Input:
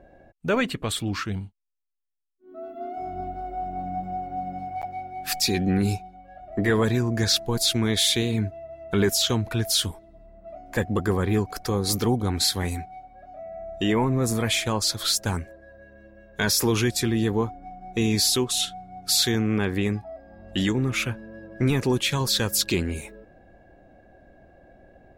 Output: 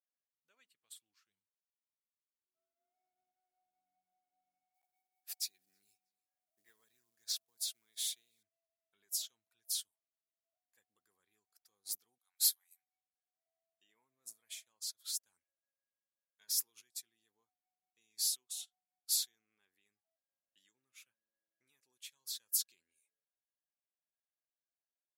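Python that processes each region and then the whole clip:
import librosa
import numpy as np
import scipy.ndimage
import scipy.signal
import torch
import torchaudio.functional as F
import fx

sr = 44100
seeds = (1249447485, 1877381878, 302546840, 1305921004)

y = fx.chain(x, sr, fx.quant_companded(bits=6),
    fx.echo_feedback(ms=322, feedback_pct=28, wet_db=-21.5), at=(4.74, 8.43))
y = fx.chain(y, sr, fx.highpass(hz=790.0, slope=24),
    fx.peak_eq(hz=13000.0, db=12.5, octaves=0.35), at=(12.18, 13.46))
y = np.diff(y, prepend=0.0)
y = fx.upward_expand(y, sr, threshold_db=-39.0, expansion=2.5)
y = y * 10.0 ** (-6.5 / 20.0)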